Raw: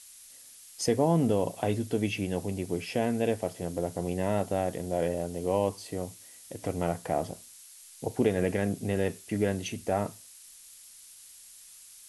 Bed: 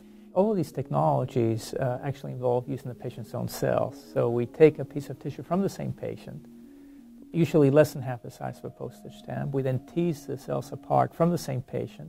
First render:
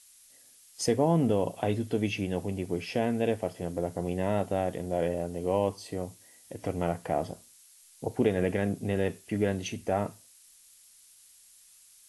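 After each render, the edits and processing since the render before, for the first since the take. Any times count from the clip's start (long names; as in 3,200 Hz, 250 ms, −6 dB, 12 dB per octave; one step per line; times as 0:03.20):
noise reduction from a noise print 6 dB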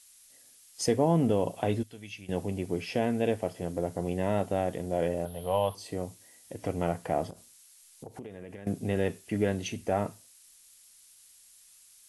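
0:01.83–0:02.29: guitar amp tone stack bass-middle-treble 5-5-5
0:05.25–0:05.75: drawn EQ curve 140 Hz 0 dB, 210 Hz −7 dB, 320 Hz −16 dB, 600 Hz +2 dB, 1,500 Hz +3 dB, 2,300 Hz −5 dB, 3,400 Hz +11 dB, 4,800 Hz −5 dB, 7,300 Hz −17 dB, 11,000 Hz +10 dB
0:07.30–0:08.67: downward compressor, threshold −40 dBFS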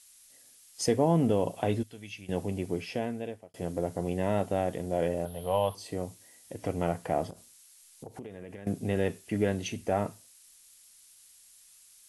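0:02.68–0:03.54: fade out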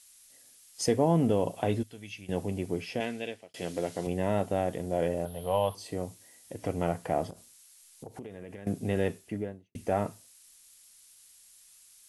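0:03.00–0:04.07: meter weighting curve D
0:09.04–0:09.75: fade out and dull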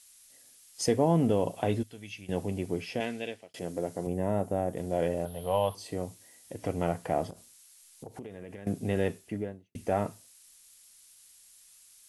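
0:03.59–0:04.77: parametric band 3,200 Hz −12.5 dB 1.9 octaves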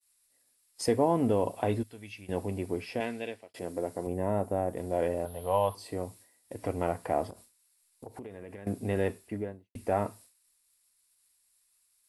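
thirty-one-band graphic EQ 160 Hz −10 dB, 1,000 Hz +4 dB, 3,150 Hz −6 dB, 6,300 Hz −9 dB
downward expander −49 dBFS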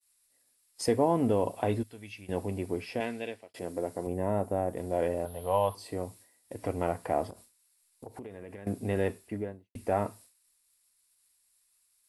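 no processing that can be heard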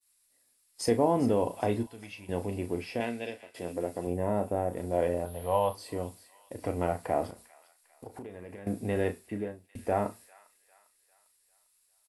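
double-tracking delay 34 ms −9.5 dB
delay with a high-pass on its return 400 ms, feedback 47%, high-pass 1,700 Hz, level −15 dB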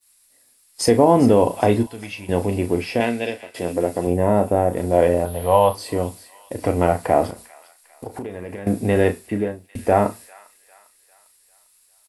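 level +12 dB
brickwall limiter −3 dBFS, peak gain reduction 3 dB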